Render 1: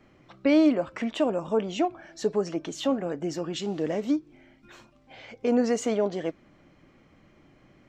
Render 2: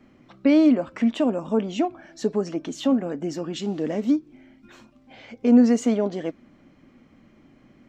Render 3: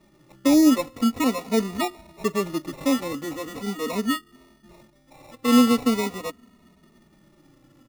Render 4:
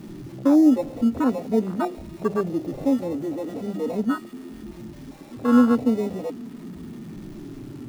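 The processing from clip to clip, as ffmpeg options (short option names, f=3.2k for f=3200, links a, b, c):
-af "equalizer=f=240:w=3.1:g=10.5"
-filter_complex "[0:a]acrusher=samples=28:mix=1:aa=0.000001,asplit=2[a][b];[b]adelay=2.9,afreqshift=-0.42[c];[a][c]amix=inputs=2:normalize=1,volume=1.5dB"
-af "aeval=exprs='val(0)+0.5*0.0398*sgn(val(0))':c=same,afwtdn=0.0708,bandreject=f=50:t=h:w=6,bandreject=f=100:t=h:w=6,bandreject=f=150:t=h:w=6,bandreject=f=200:t=h:w=6"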